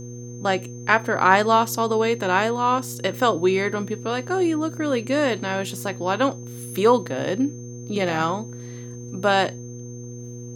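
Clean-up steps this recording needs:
hum removal 120.7 Hz, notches 4
notch filter 6,300 Hz, Q 30

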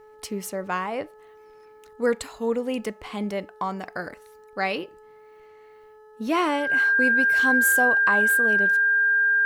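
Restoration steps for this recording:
hum removal 429.5 Hz, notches 4
notch filter 1,600 Hz, Q 30

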